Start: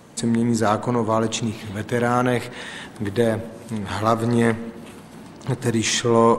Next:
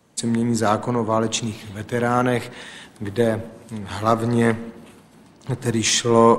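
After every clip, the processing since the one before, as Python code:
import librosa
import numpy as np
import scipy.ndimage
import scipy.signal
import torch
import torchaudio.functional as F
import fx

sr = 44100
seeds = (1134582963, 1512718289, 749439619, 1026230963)

y = fx.band_widen(x, sr, depth_pct=40)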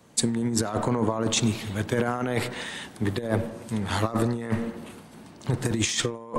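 y = fx.over_compress(x, sr, threshold_db=-23.0, ratio=-0.5)
y = F.gain(torch.from_numpy(y), -1.5).numpy()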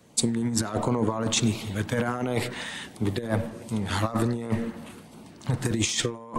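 y = fx.filter_lfo_notch(x, sr, shape='sine', hz=1.4, low_hz=360.0, high_hz=1800.0, q=2.7)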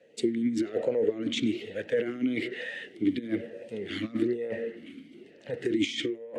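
y = fx.vowel_sweep(x, sr, vowels='e-i', hz=1.1)
y = F.gain(torch.from_numpy(y), 8.5).numpy()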